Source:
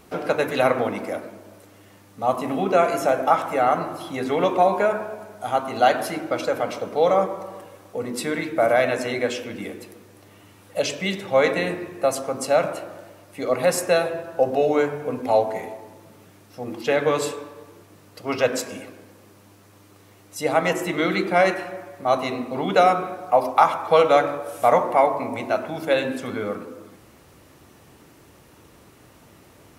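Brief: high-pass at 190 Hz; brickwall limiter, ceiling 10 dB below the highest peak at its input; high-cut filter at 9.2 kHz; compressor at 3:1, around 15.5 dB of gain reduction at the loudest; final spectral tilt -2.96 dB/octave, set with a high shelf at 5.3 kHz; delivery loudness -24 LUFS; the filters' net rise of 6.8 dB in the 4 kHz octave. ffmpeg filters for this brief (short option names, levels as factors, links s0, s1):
-af "highpass=190,lowpass=9200,equalizer=f=4000:t=o:g=5.5,highshelf=f=5300:g=7.5,acompressor=threshold=0.0224:ratio=3,volume=4.22,alimiter=limit=0.224:level=0:latency=1"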